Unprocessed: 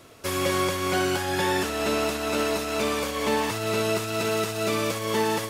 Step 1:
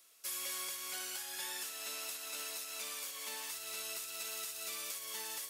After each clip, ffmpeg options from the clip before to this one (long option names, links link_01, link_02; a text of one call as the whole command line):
ffmpeg -i in.wav -af "aderivative,bandreject=frequency=72.16:width_type=h:width=4,bandreject=frequency=144.32:width_type=h:width=4,volume=-6dB" out.wav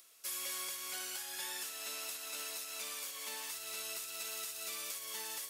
ffmpeg -i in.wav -af "acompressor=mode=upward:threshold=-58dB:ratio=2.5" out.wav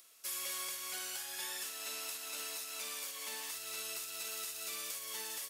ffmpeg -i in.wav -filter_complex "[0:a]asplit=2[link_01][link_02];[link_02]adelay=45,volume=-10.5dB[link_03];[link_01][link_03]amix=inputs=2:normalize=0" out.wav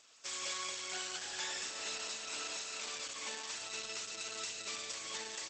ffmpeg -i in.wav -af "aecho=1:1:229:0.316,volume=4dB" -ar 48000 -c:a libopus -b:a 12k out.opus